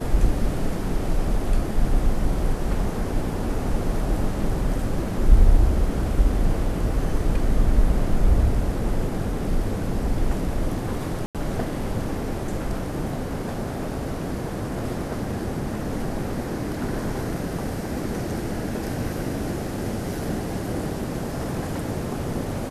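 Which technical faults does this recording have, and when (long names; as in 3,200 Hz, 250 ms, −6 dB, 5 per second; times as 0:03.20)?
0:11.26–0:11.35: drop-out 87 ms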